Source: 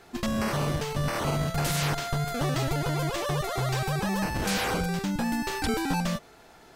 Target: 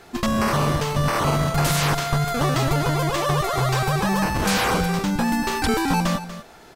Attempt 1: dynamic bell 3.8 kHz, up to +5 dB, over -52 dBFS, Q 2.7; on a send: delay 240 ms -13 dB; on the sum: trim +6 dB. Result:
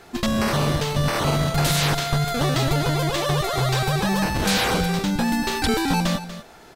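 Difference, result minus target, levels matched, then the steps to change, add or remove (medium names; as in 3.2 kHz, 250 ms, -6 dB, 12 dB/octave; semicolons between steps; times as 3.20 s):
4 kHz band +3.0 dB
change: dynamic bell 1.1 kHz, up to +5 dB, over -52 dBFS, Q 2.7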